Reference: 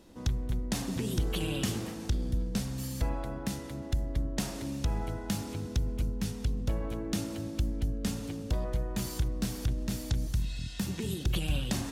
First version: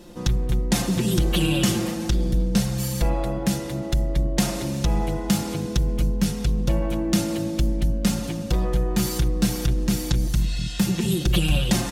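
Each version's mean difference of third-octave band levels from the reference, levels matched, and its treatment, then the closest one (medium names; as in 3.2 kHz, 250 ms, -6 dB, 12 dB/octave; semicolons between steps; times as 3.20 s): 2.0 dB: comb 5.7 ms, depth 84%; in parallel at -9 dB: saturation -27 dBFS, distortion -12 dB; on the sum: trim +6.5 dB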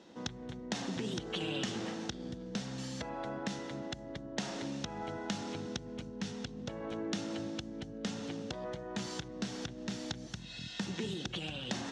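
5.5 dB: compression, threshold -31 dBFS, peak gain reduction 7.5 dB; cabinet simulation 240–5900 Hz, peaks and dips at 280 Hz -5 dB, 400 Hz -3 dB, 590 Hz -3 dB, 1.1 kHz -4 dB, 2.4 kHz -4 dB, 4.7 kHz -5 dB; trim +4.5 dB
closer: first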